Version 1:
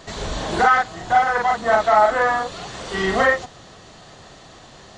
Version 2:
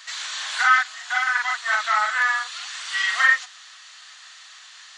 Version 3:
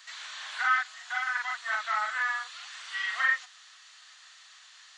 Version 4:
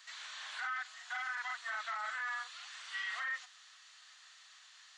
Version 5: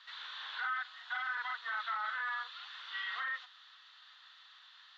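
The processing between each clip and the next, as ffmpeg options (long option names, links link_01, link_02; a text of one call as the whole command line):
ffmpeg -i in.wav -af "highpass=frequency=1400:width=0.5412,highpass=frequency=1400:width=1.3066,volume=4dB" out.wav
ffmpeg -i in.wav -filter_complex "[0:a]acrossover=split=3700[link_01][link_02];[link_02]acompressor=threshold=-39dB:ratio=4:attack=1:release=60[link_03];[link_01][link_03]amix=inputs=2:normalize=0,volume=-8.5dB" out.wav
ffmpeg -i in.wav -af "alimiter=level_in=1.5dB:limit=-24dB:level=0:latency=1:release=28,volume=-1.5dB,volume=-5.5dB" out.wav
ffmpeg -i in.wav -af "highpass=370,equalizer=frequency=450:width_type=q:width=4:gain=9,equalizer=frequency=650:width_type=q:width=4:gain=-6,equalizer=frequency=960:width_type=q:width=4:gain=4,equalizer=frequency=1400:width_type=q:width=4:gain=4,equalizer=frequency=2300:width_type=q:width=4:gain=-5,equalizer=frequency=3600:width_type=q:width=4:gain=7,lowpass=frequency=4000:width=0.5412,lowpass=frequency=4000:width=1.3066" out.wav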